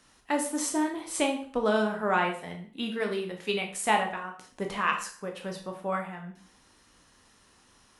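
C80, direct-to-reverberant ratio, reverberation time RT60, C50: 12.5 dB, 2.5 dB, 0.45 s, 8.5 dB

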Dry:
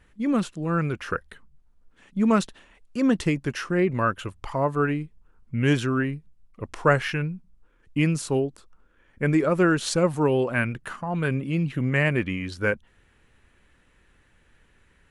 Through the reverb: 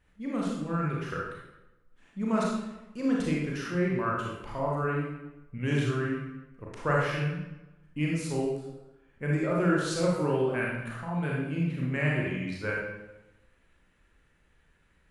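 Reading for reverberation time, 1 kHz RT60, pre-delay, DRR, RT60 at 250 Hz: 1.0 s, 1.0 s, 30 ms, −4.5 dB, 1.1 s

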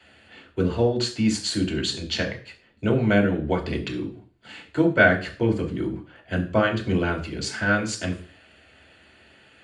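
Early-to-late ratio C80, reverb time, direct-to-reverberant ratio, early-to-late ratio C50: 16.0 dB, 0.40 s, −1.0 dB, 12.0 dB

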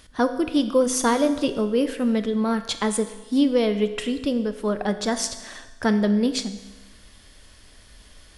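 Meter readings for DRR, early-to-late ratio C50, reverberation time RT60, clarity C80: 9.0 dB, 11.5 dB, 1.2 s, 13.0 dB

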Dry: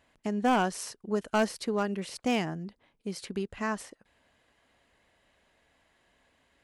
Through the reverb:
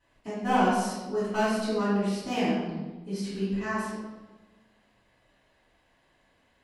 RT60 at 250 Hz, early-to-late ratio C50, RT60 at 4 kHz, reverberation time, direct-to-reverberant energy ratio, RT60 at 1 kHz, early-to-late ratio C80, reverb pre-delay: 1.5 s, −1.0 dB, 0.85 s, 1.2 s, −14.0 dB, 1.1 s, 2.5 dB, 3 ms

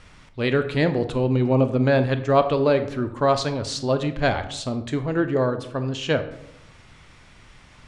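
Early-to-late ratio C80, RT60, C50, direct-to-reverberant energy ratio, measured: 14.5 dB, 0.80 s, 11.5 dB, 9.5 dB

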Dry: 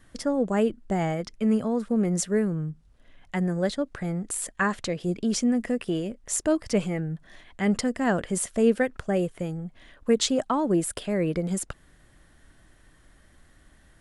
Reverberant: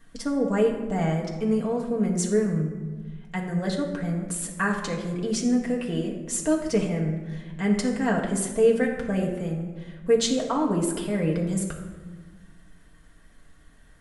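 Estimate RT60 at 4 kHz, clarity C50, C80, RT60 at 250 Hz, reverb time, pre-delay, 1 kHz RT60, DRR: 0.80 s, 6.0 dB, 7.5 dB, 2.0 s, 1.4 s, 4 ms, 1.3 s, −1.5 dB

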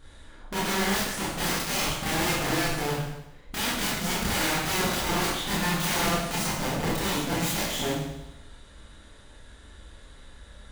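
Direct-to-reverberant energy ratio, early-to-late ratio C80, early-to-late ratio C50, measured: −7.5 dB, 3.5 dB, 0.0 dB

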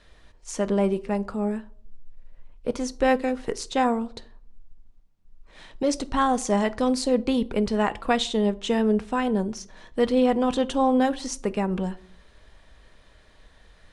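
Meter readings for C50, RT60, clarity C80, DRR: 21.5 dB, 0.55 s, 26.0 dB, 11.5 dB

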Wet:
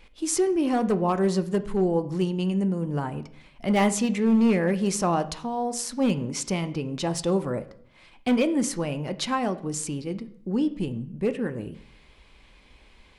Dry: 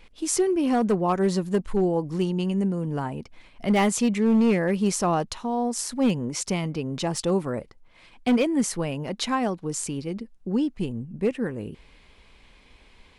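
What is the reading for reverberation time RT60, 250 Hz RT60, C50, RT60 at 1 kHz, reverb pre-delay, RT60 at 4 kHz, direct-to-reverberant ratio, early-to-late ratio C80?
0.60 s, 0.70 s, 15.5 dB, 0.55 s, 3 ms, 0.50 s, 10.0 dB, 18.5 dB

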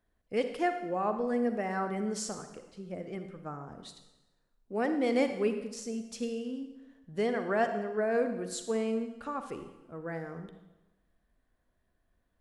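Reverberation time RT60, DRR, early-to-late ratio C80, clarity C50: 1.0 s, 7.5 dB, 10.0 dB, 8.0 dB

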